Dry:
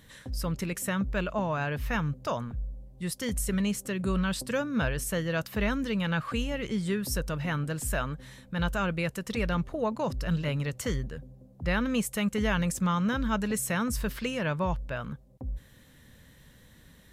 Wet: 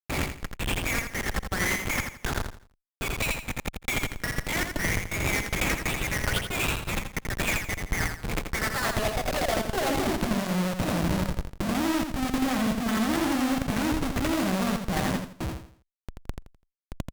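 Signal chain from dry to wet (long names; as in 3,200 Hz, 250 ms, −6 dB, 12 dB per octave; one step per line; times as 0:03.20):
pitch shift by two crossfaded delay taps +4 semitones
treble cut that deepens with the level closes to 1,700 Hz, closed at −26 dBFS
notch filter 470 Hz, Q 12
in parallel at +1 dB: downward compressor 5 to 1, threshold −41 dBFS, peak gain reduction 15 dB
on the sum: brickwall limiter −21.5 dBFS, peak gain reduction 5.5 dB
high-pass filter sweep 2,300 Hz → 200 Hz, 0:08.20–0:10.51
comparator with hysteresis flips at −36.5 dBFS
on a send: repeating echo 84 ms, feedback 35%, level −4 dB
on the sum: harmonic generator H 2 −9 dB, 7 −26 dB, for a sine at −20 dBFS
level +3.5 dB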